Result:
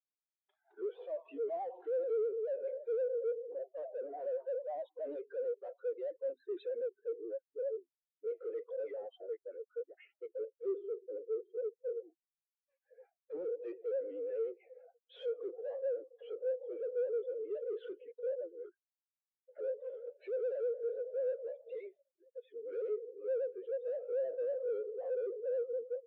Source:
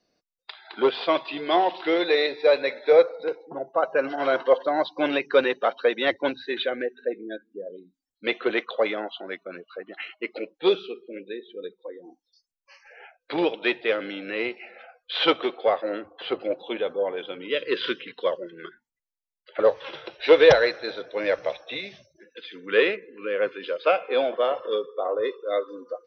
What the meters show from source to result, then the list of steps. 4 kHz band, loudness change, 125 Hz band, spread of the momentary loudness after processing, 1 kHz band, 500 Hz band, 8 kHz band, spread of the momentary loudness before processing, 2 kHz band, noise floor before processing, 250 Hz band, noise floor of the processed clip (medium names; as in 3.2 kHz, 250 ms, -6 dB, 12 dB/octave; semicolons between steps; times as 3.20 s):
under -35 dB, -15.0 dB, under -35 dB, 10 LU, -23.5 dB, -12.5 dB, no reading, 17 LU, under -30 dB, under -85 dBFS, -22.0 dB, under -85 dBFS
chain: peaking EQ 480 Hz +13 dB 0.67 oct; vibrato 9.4 Hz 87 cents; in parallel at +0.5 dB: compression, threshold -17 dBFS, peak gain reduction 18.5 dB; on the sum: band-pass 350–2900 Hz; saturation -28.5 dBFS, distortion 1 dB; spectral contrast expander 2.5:1